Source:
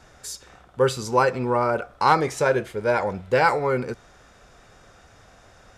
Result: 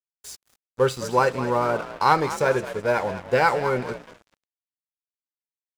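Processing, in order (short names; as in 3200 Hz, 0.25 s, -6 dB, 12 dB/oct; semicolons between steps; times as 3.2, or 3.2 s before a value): frequency-shifting echo 0.209 s, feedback 42%, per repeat +45 Hz, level -12 dB; crossover distortion -38 dBFS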